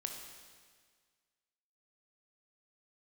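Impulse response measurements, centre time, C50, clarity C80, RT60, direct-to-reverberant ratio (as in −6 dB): 50 ms, 4.0 dB, 5.5 dB, 1.7 s, 3.0 dB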